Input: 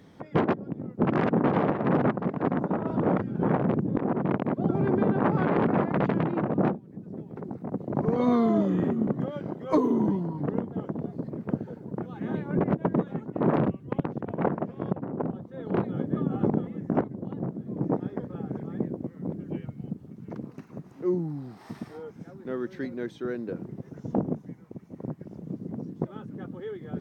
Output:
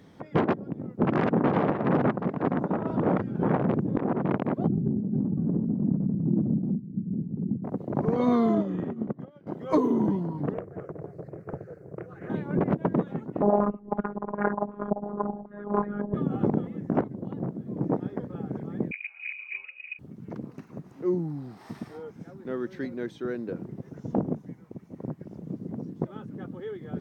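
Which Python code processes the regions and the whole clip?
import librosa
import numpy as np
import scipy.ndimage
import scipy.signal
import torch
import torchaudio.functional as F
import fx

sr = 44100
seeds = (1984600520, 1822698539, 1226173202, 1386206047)

y = fx.chain(x, sr, fx.lowpass_res(hz=210.0, q=2.3),
    fx.over_compress(threshold_db=-26.0, ratio=-1.0), at=(4.67, 7.64))
y = fx.chain(y, sr, fx.air_absorb(metres=55.0),
    fx.upward_expand(threshold_db=-34.0, expansion=2.5), at=(8.55, 9.47))
y = fx.chain(y, sr, fx.fixed_phaser(hz=900.0, stages=6),
    fx.doppler_dist(depth_ms=0.7), at=(10.54, 12.3))
y = fx.chain(y, sr, fx.robotise(hz=205.0),
    fx.filter_held_lowpass(hz=5.4, low_hz=740.0, high_hz=1600.0), at=(13.42, 16.14))
y = fx.chain(y, sr, fx.highpass(hz=230.0, slope=12),
    fx.air_absorb(metres=400.0),
    fx.freq_invert(carrier_hz=2700), at=(18.91, 19.99))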